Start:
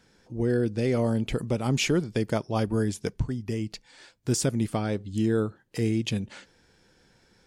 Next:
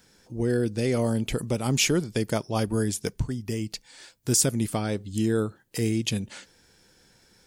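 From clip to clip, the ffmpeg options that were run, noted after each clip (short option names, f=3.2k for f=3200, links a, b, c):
-af "aemphasis=mode=production:type=50kf"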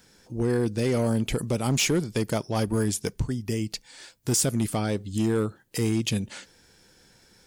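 -filter_complex "[0:a]asplit=2[a][b];[b]alimiter=limit=-18.5dB:level=0:latency=1:release=34,volume=-1.5dB[c];[a][c]amix=inputs=2:normalize=0,asoftclip=type=hard:threshold=-14.5dB,volume=-3.5dB"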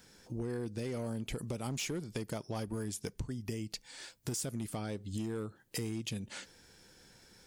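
-af "acompressor=threshold=-33dB:ratio=6,volume=-2.5dB"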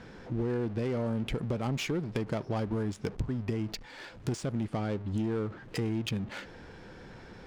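-af "aeval=exprs='val(0)+0.5*0.00501*sgn(val(0))':c=same,adynamicsmooth=sensitivity=8:basefreq=1.6k,volume=5.5dB"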